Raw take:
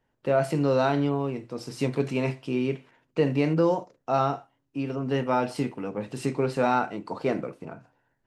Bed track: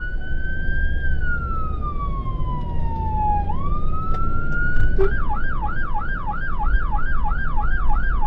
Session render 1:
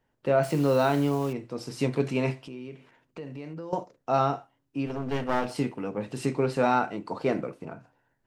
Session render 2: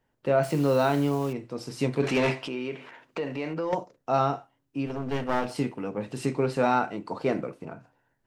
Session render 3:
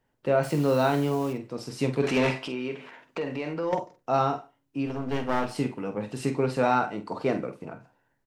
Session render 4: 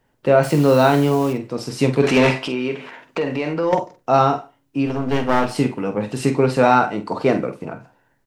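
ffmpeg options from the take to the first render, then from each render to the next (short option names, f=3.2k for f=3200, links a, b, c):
-filter_complex "[0:a]asettb=1/sr,asplit=3[a][b][c];[a]atrim=end=0.434[d];[b]atrim=start=0.43:end=1.33,asetpts=PTS-STARTPTS,afade=t=in:d=0.004:c=qsin,afade=t=out:st=0.896:d=0.004:c=qsin,acrusher=bits=8:dc=4:mix=0:aa=0.000001[e];[c]atrim=start=1.326[f];[d][e]acrossfade=d=0.004:c1=hsin:c2=qsin[g];[g][f]acrossfade=d=0.004:c1=qsin:c2=hsin,asettb=1/sr,asplit=3[h][i][j];[h]atrim=end=2.364[k];[i]atrim=start=2.36:end=3.73,asetpts=PTS-STARTPTS,afade=t=in:d=0.004:c=qsin,afade=t=out:st=1.366:d=0.004:c=qsin,acompressor=threshold=-41dB:ratio=3:attack=3.2:release=140:knee=1:detection=peak[l];[j]atrim=start=3.726[m];[k][l]acrossfade=d=0.004:c1=hsin:c2=qsin[n];[n][m]acrossfade=d=0.004:c1=qsin:c2=hsin,asettb=1/sr,asplit=3[o][p][q];[o]atrim=end=4.864[r];[p]atrim=start=4.86:end=5.54,asetpts=PTS-STARTPTS,afade=t=in:d=0.004:c=qsin,afade=t=out:st=0.676:d=0.004:c=qsin,aeval=exprs='clip(val(0),-1,0.0168)':c=same[s];[q]atrim=start=5.536[t];[r][s]acrossfade=d=0.004:c1=hsin:c2=qsin[u];[u][t]acrossfade=d=0.004:c1=qsin:c2=hsin"
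-filter_complex "[0:a]asplit=3[a][b][c];[a]afade=t=out:st=2.02:d=0.02[d];[b]asplit=2[e][f];[f]highpass=f=720:p=1,volume=21dB,asoftclip=type=tanh:threshold=-15.5dB[g];[e][g]amix=inputs=2:normalize=0,lowpass=f=3.1k:p=1,volume=-6dB,afade=t=in:st=2.02:d=0.02,afade=t=out:st=3.73:d=0.02[h];[c]afade=t=in:st=3.73:d=0.02[i];[d][h][i]amix=inputs=3:normalize=0"
-filter_complex "[0:a]asplit=2[a][b];[b]adelay=47,volume=-10dB[c];[a][c]amix=inputs=2:normalize=0,asplit=2[d][e];[e]adelay=145.8,volume=-30dB,highshelf=f=4k:g=-3.28[f];[d][f]amix=inputs=2:normalize=0"
-af "volume=9dB"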